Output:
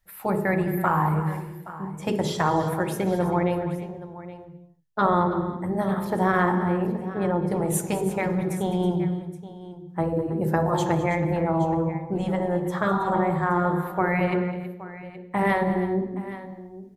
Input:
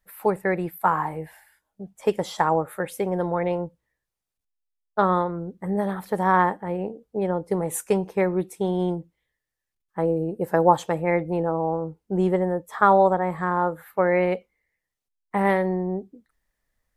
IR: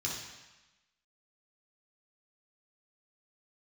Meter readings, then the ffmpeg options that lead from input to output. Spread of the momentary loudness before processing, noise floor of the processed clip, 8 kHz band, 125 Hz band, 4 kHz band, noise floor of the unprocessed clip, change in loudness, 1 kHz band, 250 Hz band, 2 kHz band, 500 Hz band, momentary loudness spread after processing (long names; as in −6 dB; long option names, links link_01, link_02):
11 LU, −45 dBFS, +1.5 dB, +4.5 dB, +3.0 dB, −84 dBFS, −1.0 dB, −2.0 dB, +2.5 dB, +0.5 dB, −2.5 dB, 14 LU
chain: -filter_complex "[0:a]asplit=2[link_01][link_02];[1:a]atrim=start_sample=2205,afade=type=out:start_time=0.39:duration=0.01,atrim=end_sample=17640,lowshelf=frequency=470:gain=11[link_03];[link_02][link_03]afir=irnorm=-1:irlink=0,volume=-11.5dB[link_04];[link_01][link_04]amix=inputs=2:normalize=0,afftfilt=real='re*lt(hypot(re,im),0.708)':imag='im*lt(hypot(re,im),0.708)':win_size=1024:overlap=0.75,adynamicequalizer=threshold=0.00891:dfrequency=150:dqfactor=1.1:tfrequency=150:tqfactor=1.1:attack=5:release=100:ratio=0.375:range=1.5:mode=boostabove:tftype=bell,aecho=1:1:206|323|822:0.168|0.188|0.158"